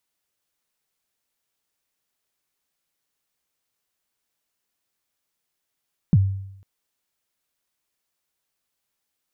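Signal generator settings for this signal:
synth kick length 0.50 s, from 200 Hz, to 97 Hz, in 40 ms, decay 0.78 s, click off, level −9.5 dB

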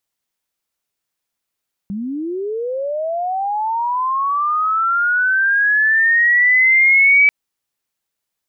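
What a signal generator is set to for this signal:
glide linear 190 Hz → 2,300 Hz −21.5 dBFS → −7.5 dBFS 5.39 s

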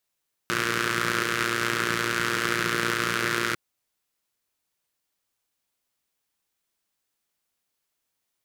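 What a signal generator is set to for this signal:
pulse-train model of a four-cylinder engine, steady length 3.05 s, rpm 3,500, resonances 180/350/1,400 Hz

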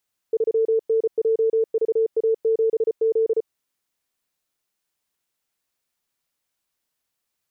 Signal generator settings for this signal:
Morse code "3NJVA7Z" 34 words per minute 447 Hz −16 dBFS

